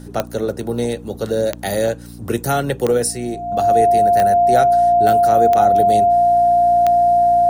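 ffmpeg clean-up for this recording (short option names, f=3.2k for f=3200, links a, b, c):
-af "adeclick=t=4,bandreject=f=58.9:t=h:w=4,bandreject=f=117.8:t=h:w=4,bandreject=f=176.7:t=h:w=4,bandreject=f=235.6:t=h:w=4,bandreject=f=294.5:t=h:w=4,bandreject=f=700:w=30"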